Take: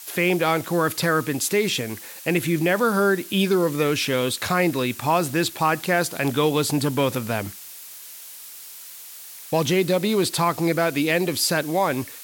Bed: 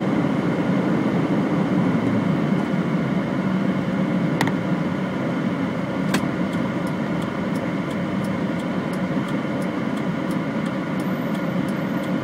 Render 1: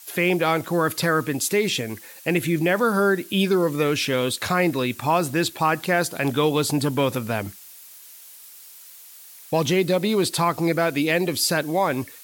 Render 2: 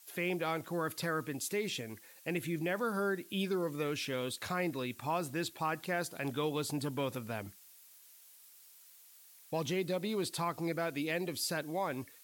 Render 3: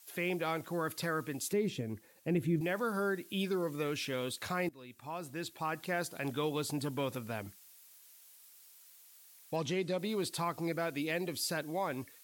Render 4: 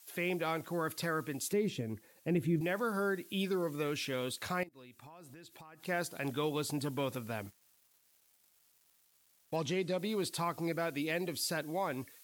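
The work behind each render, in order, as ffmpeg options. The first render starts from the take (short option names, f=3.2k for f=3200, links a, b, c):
-af "afftdn=nr=6:nf=-41"
-af "volume=-14dB"
-filter_complex "[0:a]asettb=1/sr,asplit=3[a][b][c];[a]atrim=end=1.534[d];[b]atrim=start=1.53:end=2.61,asetpts=PTS-STARTPTS,afade=t=in:d=0.004:c=qsin,afade=t=out:st=1.076:d=0.004:c=qsin,tiltshelf=f=640:g=8[e];[c]atrim=start=2.606[f];[d][e]acrossfade=d=0.004:c1=hsin:c2=qsin[g];[g][f]acrossfade=d=0.004:c1=qsin:c2=hsin,asettb=1/sr,asplit=3[h][i][j];[h]atrim=end=9.564[k];[i]atrim=start=9.56:end=9.99,asetpts=PTS-STARTPTS,afade=t=in:d=0.004:c=qsin,afade=t=out:st=0.426:d=0.004:c=qsin,lowpass=8.4k[l];[j]atrim=start=9.986[m];[k][l]acrossfade=d=0.004:c1=hsin:c2=qsin[n];[n][m]acrossfade=d=0.004:c1=qsin:c2=hsin,asplit=2[o][p];[o]atrim=end=4.69,asetpts=PTS-STARTPTS,afade=t=out:st=4.686:d=0.004:c=hsin:silence=0.105925[q];[p]atrim=start=4.69,asetpts=PTS-STARTPTS,afade=t=in:d=1.24:silence=0.105925[r];[q][r]concat=n=2:v=0:a=1"
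-filter_complex "[0:a]asettb=1/sr,asplit=3[a][b][c];[a]atrim=end=4.634[d];[b]atrim=start=4.63:end=5.85,asetpts=PTS-STARTPTS,afade=t=in:d=0.004:c=qsin,afade=t=out:st=1.216:d=0.004:c=qsin,acompressor=threshold=-49dB:ratio=20:attack=3.2:release=140:knee=1:detection=peak[e];[c]atrim=start=5.846[f];[d][e]acrossfade=d=0.004:c1=hsin:c2=qsin[g];[g][f]acrossfade=d=0.004:c1=qsin:c2=hsin,asettb=1/sr,asplit=3[h][i][j];[h]atrim=end=7.464[k];[i]atrim=start=7.46:end=9.54,asetpts=PTS-STARTPTS,afade=t=in:d=0.004:c=qsin,afade=t=out:st=2.076:d=0.004:c=qsin,aeval=exprs='sgn(val(0))*max(abs(val(0))-0.0015,0)':c=same[l];[j]atrim=start=9.536[m];[k][l]acrossfade=d=0.004:c1=hsin:c2=qsin[n];[n][m]acrossfade=d=0.004:c1=qsin:c2=hsin"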